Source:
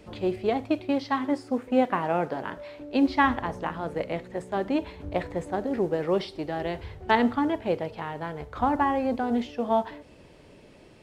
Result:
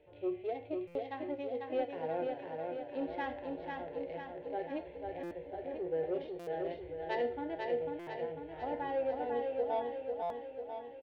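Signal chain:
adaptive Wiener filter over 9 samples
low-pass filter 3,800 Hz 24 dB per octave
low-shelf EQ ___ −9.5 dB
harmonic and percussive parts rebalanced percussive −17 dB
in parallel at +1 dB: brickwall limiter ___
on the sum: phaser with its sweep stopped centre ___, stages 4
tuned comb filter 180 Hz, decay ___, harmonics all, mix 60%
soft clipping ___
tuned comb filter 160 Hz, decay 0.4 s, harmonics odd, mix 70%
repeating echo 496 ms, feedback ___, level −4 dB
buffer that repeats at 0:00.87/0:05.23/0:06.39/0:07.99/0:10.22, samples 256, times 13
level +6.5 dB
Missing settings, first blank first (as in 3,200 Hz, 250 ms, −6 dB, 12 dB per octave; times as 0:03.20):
380 Hz, −20.5 dBFS, 490 Hz, 0.32 s, −21 dBFS, 58%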